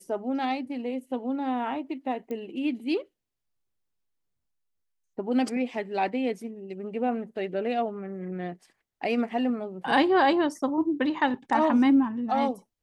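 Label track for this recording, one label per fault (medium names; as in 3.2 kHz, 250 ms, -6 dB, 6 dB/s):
2.310000	2.310000	pop -24 dBFS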